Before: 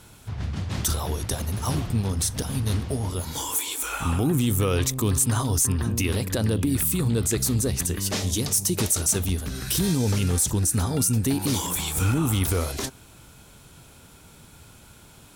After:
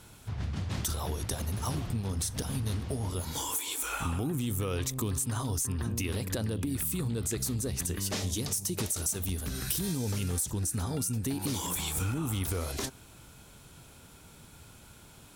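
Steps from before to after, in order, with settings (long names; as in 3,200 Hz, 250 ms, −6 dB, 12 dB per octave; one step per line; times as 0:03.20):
0:08.96–0:10.45: high-shelf EQ 9,900 Hz +8 dB
downward compressor, threshold −25 dBFS, peak gain reduction 10.5 dB
level −3.5 dB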